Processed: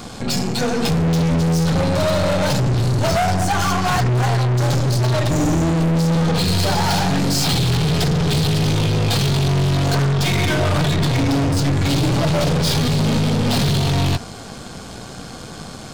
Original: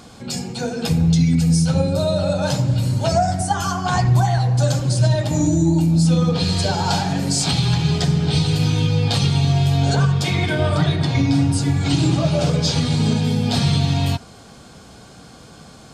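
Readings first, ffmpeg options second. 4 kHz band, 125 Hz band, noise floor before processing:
+2.0 dB, -0.5 dB, -43 dBFS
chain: -filter_complex "[0:a]acrossover=split=6800[s0][s1];[s1]acompressor=threshold=0.00398:ratio=4:attack=1:release=60[s2];[s0][s2]amix=inputs=2:normalize=0,asoftclip=type=tanh:threshold=0.0631,aeval=exprs='0.0631*(cos(1*acos(clip(val(0)/0.0631,-1,1)))-cos(1*PI/2))+0.0141*(cos(4*acos(clip(val(0)/0.0631,-1,1)))-cos(4*PI/2))':c=same,volume=2.66"

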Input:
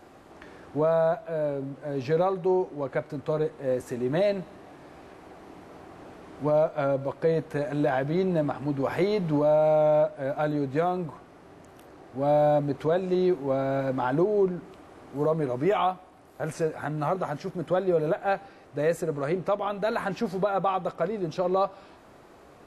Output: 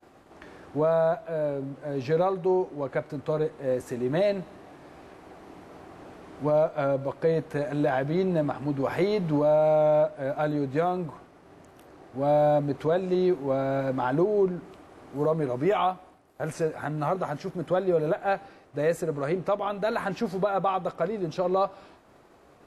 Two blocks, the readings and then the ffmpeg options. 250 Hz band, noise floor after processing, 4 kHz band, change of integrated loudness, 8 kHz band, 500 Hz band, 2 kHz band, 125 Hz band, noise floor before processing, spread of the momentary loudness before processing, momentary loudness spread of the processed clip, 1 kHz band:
0.0 dB, -55 dBFS, 0.0 dB, 0.0 dB, no reading, 0.0 dB, 0.0 dB, 0.0 dB, -52 dBFS, 10 LU, 10 LU, 0.0 dB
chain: -af "agate=range=0.0224:threshold=0.00447:ratio=3:detection=peak"

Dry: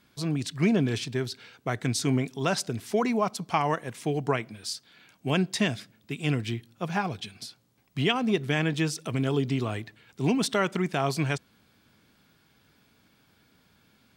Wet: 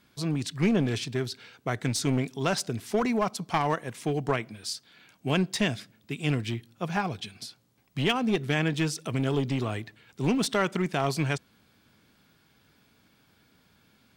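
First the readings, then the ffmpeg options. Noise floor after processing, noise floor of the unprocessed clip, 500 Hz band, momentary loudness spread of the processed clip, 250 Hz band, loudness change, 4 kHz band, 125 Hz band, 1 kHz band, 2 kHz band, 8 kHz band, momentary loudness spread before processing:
-65 dBFS, -65 dBFS, -0.5 dB, 11 LU, -0.5 dB, -0.5 dB, 0.0 dB, -0.5 dB, -0.5 dB, -0.5 dB, 0.0 dB, 11 LU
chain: -af "aeval=exprs='clip(val(0),-1,0.0668)':c=same"

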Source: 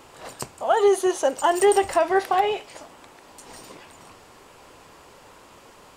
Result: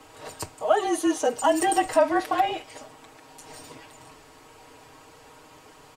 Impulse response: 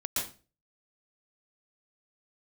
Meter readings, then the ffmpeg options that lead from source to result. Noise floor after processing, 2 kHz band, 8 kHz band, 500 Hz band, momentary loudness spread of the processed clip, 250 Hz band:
-52 dBFS, -2.0 dB, -1.0 dB, -4.5 dB, 17 LU, +2.0 dB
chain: -af "aecho=1:1:6.1:0.86,afreqshift=-38,volume=0.668"

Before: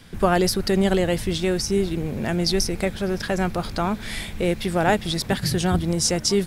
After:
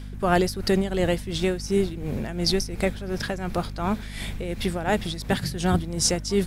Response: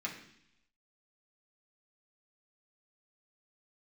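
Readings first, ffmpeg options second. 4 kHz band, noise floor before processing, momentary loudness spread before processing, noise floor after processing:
-3.0 dB, -36 dBFS, 6 LU, -36 dBFS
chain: -af "tremolo=f=2.8:d=0.73,aeval=exprs='val(0)+0.0178*(sin(2*PI*50*n/s)+sin(2*PI*2*50*n/s)/2+sin(2*PI*3*50*n/s)/3+sin(2*PI*4*50*n/s)/4+sin(2*PI*5*50*n/s)/5)':c=same"

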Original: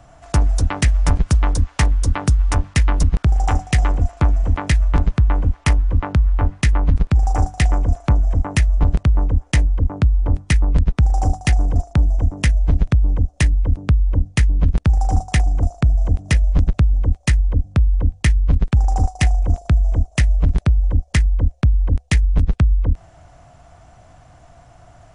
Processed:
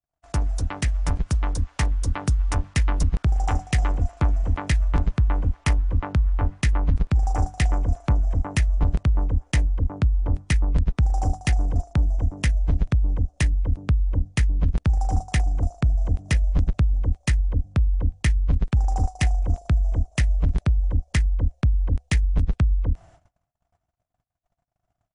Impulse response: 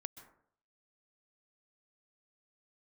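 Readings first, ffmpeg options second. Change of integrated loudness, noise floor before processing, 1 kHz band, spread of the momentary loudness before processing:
-5.5 dB, -48 dBFS, -5.5 dB, 2 LU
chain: -af "agate=range=0.00708:threshold=0.00891:ratio=16:detection=peak,dynaudnorm=f=430:g=9:m=1.58,volume=0.398"

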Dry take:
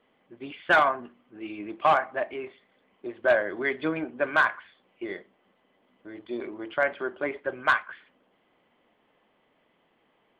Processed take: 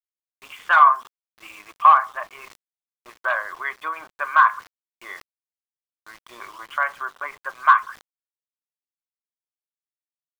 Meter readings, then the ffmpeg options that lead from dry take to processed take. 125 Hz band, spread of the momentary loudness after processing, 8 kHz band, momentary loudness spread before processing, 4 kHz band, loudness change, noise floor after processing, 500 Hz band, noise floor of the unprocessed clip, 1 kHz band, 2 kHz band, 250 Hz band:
under -15 dB, 23 LU, no reading, 19 LU, -0.5 dB, +7.5 dB, under -85 dBFS, -10.0 dB, -69 dBFS, +10.0 dB, +3.0 dB, under -20 dB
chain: -filter_complex "[0:a]highpass=f=1100:t=q:w=7.8,asplit=2[s0][s1];[s1]acompressor=threshold=0.0178:ratio=6,volume=0.891[s2];[s0][s2]amix=inputs=2:normalize=0,highshelf=f=4300:g=3,agate=range=0.0224:threshold=0.00562:ratio=3:detection=peak,aeval=exprs='val(0)*gte(abs(val(0)),0.0106)':c=same,areverse,acompressor=mode=upward:threshold=0.0158:ratio=2.5,areverse,adynamicequalizer=threshold=0.0224:dfrequency=1700:dqfactor=0.7:tfrequency=1700:tqfactor=0.7:attack=5:release=100:ratio=0.375:range=2:mode=cutabove:tftype=highshelf,volume=0.668"

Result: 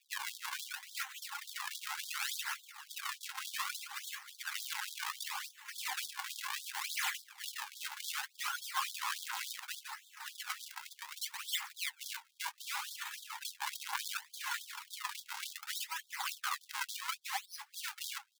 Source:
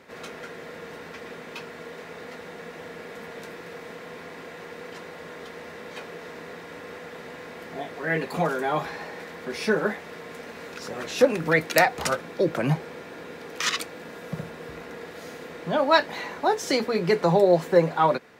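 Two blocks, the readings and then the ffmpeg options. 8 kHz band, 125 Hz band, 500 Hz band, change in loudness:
-1.5 dB, under -40 dB, under -40 dB, -15.5 dB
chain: -filter_complex "[0:a]acrossover=split=190[s0][s1];[s1]acompressor=threshold=0.0282:ratio=3[s2];[s0][s2]amix=inputs=2:normalize=0,highshelf=f=3800:g=2,acrusher=samples=42:mix=1:aa=0.000001:lfo=1:lforange=67.2:lforate=0.67,areverse,acompressor=threshold=0.0126:ratio=16,areverse,alimiter=level_in=4.47:limit=0.0631:level=0:latency=1:release=199,volume=0.224,asplit=2[s3][s4];[s4]adelay=349.9,volume=0.282,highshelf=f=4000:g=-7.87[s5];[s3][s5]amix=inputs=2:normalize=0,aphaser=in_gain=1:out_gain=1:delay=4.2:decay=0.45:speed=0.43:type=triangular,adynamicequalizer=threshold=0.00126:dfrequency=160:dqfactor=1.4:tfrequency=160:tqfactor=1.4:attack=5:release=100:ratio=0.375:range=3.5:mode=boostabove:tftype=bell,agate=range=0.0631:threshold=0.00891:ratio=16:detection=peak,afftfilt=real='re*gte(b*sr/1024,750*pow(3300/750,0.5+0.5*sin(2*PI*3.5*pts/sr)))':imag='im*gte(b*sr/1024,750*pow(3300/750,0.5+0.5*sin(2*PI*3.5*pts/sr)))':win_size=1024:overlap=0.75,volume=6.31"

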